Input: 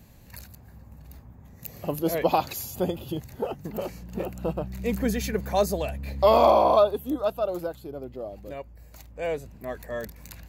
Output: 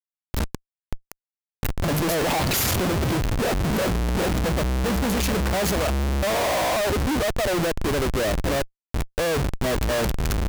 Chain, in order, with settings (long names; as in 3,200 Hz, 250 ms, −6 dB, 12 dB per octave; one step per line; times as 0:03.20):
speech leveller within 4 dB 2 s
downward expander −40 dBFS
comparator with hysteresis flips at −37 dBFS
level +4.5 dB